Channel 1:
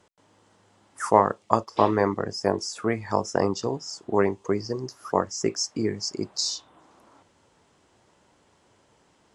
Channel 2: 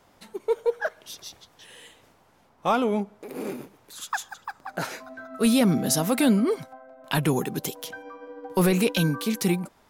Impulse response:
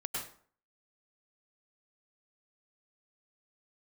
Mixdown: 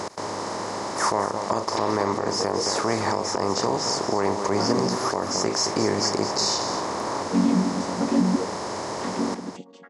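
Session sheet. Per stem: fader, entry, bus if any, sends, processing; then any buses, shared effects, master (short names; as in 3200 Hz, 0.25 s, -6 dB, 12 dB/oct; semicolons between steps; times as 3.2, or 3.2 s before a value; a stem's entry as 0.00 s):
+1.0 dB, 0.00 s, no send, echo send -9.5 dB, per-bin compression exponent 0.4; compressor 2.5:1, threshold -19 dBFS, peak gain reduction 7.5 dB
-1.5 dB, 1.90 s, no send, echo send -23.5 dB, chord vocoder major triad, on F#3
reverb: off
echo: echo 0.221 s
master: limiter -11 dBFS, peak gain reduction 8 dB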